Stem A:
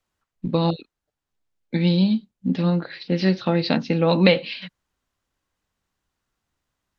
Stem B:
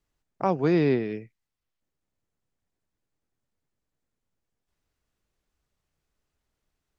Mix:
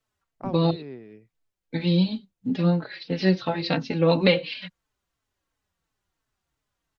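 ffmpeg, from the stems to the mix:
-filter_complex "[0:a]equalizer=f=220:t=o:w=0.21:g=-7.5,asplit=2[s0][s1];[s1]adelay=4,afreqshift=-2.9[s2];[s0][s2]amix=inputs=2:normalize=1,volume=1.12,asplit=2[s3][s4];[1:a]highshelf=f=4300:g=-10.5,volume=0.335[s5];[s4]apad=whole_len=308049[s6];[s5][s6]sidechaincompress=threshold=0.0501:ratio=5:attack=16:release=1310[s7];[s3][s7]amix=inputs=2:normalize=0"

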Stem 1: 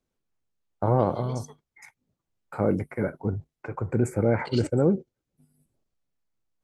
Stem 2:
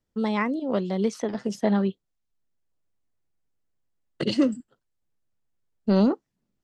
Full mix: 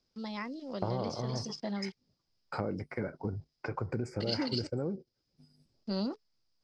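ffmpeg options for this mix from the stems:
-filter_complex "[0:a]acompressor=threshold=0.0224:ratio=5,volume=1.06[s0];[1:a]aeval=exprs='val(0)*gte(abs(val(0)),0.00562)':c=same,bandreject=f=430:w=12,volume=0.2[s1];[s0][s1]amix=inputs=2:normalize=0,lowpass=f=5000:t=q:w=11"

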